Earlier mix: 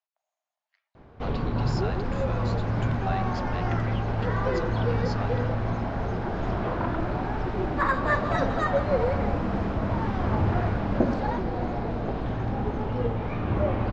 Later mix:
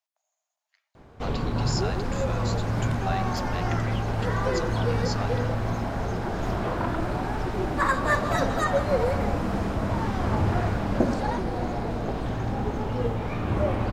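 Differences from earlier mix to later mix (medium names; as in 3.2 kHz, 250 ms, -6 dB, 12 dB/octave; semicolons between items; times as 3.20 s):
speech: send +6.0 dB; master: remove distance through air 170 m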